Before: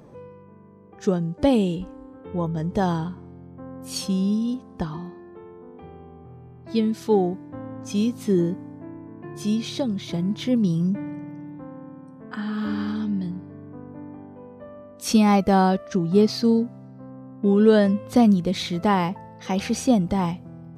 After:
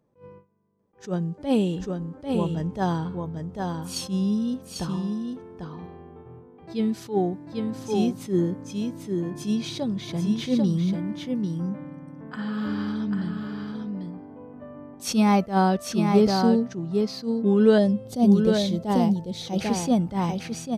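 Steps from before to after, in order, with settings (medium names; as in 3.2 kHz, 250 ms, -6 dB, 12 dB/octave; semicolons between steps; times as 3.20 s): gate with hold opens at -36 dBFS; 17.78–19.61 s: high-order bell 1.6 kHz -10.5 dB; delay 795 ms -5 dB; attacks held to a fixed rise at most 220 dB/s; trim -1.5 dB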